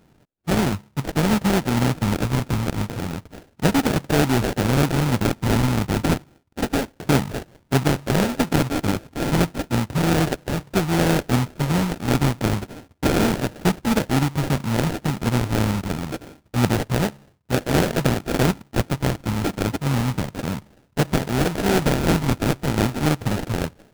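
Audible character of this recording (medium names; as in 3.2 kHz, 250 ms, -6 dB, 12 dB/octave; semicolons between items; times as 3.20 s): a buzz of ramps at a fixed pitch in blocks of 32 samples; phasing stages 4, 0.3 Hz, lowest notch 510–1400 Hz; aliases and images of a low sample rate 1.1 kHz, jitter 20%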